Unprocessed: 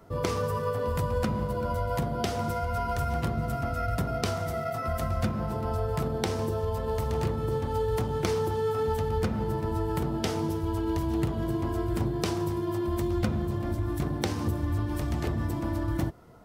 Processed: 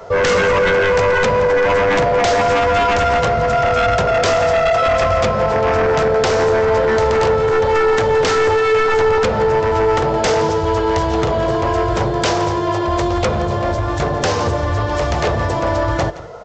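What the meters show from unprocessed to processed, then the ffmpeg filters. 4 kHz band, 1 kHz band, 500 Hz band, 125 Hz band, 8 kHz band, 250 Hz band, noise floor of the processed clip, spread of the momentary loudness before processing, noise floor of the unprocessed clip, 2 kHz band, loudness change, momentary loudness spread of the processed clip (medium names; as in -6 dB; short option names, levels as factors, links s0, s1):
+16.0 dB, +17.0 dB, +17.0 dB, +6.5 dB, +13.5 dB, +7.0 dB, -19 dBFS, 2 LU, -32 dBFS, +21.5 dB, +14.0 dB, 4 LU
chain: -af "lowshelf=f=380:t=q:w=3:g=-8.5,aresample=16000,aeval=exprs='0.266*sin(PI/2*5.62*val(0)/0.266)':c=same,aresample=44100,aecho=1:1:170:0.15"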